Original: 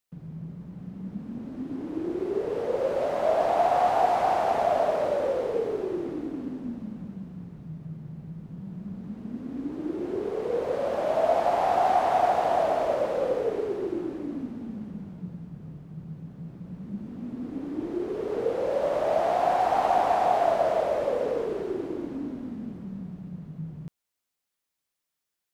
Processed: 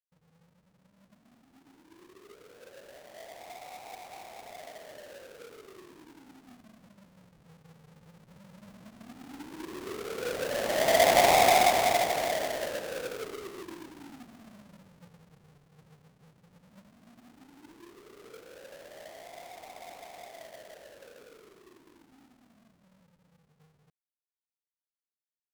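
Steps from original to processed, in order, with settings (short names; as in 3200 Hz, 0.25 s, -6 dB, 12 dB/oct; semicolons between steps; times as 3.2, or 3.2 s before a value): half-waves squared off; Doppler pass-by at 11.27, 9 m/s, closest 3.2 m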